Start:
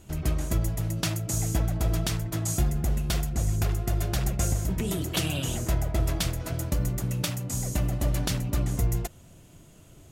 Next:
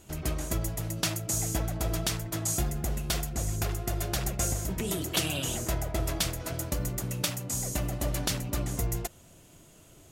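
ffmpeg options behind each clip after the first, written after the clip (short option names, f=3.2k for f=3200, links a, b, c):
-af "bass=f=250:g=-6,treble=f=4k:g=2"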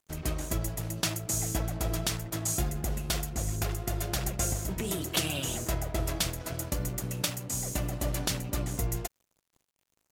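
-af "aeval=exprs='sgn(val(0))*max(abs(val(0))-0.00398,0)':c=same"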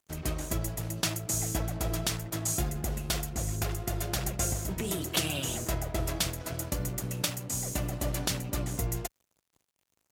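-af "highpass=42"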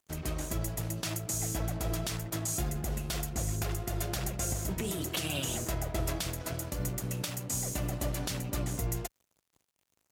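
-af "alimiter=limit=-21.5dB:level=0:latency=1:release=94"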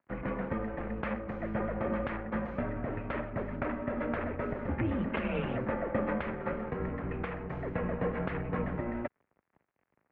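-af "highpass=f=200:t=q:w=0.5412,highpass=f=200:t=q:w=1.307,lowpass=f=2.2k:t=q:w=0.5176,lowpass=f=2.2k:t=q:w=0.7071,lowpass=f=2.2k:t=q:w=1.932,afreqshift=-110,volume=6.5dB"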